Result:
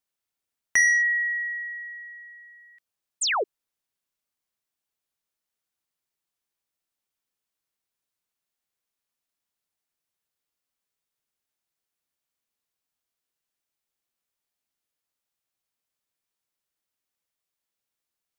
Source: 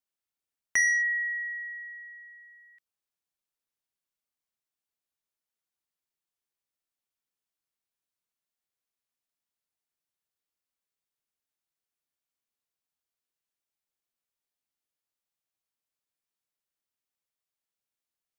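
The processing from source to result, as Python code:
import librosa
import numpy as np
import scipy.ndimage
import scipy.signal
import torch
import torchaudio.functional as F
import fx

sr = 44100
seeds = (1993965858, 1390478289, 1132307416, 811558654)

y = fx.dynamic_eq(x, sr, hz=840.0, q=1.4, threshold_db=-45.0, ratio=4.0, max_db=4)
y = fx.spec_paint(y, sr, seeds[0], shape='fall', start_s=3.21, length_s=0.23, low_hz=350.0, high_hz=9300.0, level_db=-28.0)
y = F.gain(torch.from_numpy(y), 4.0).numpy()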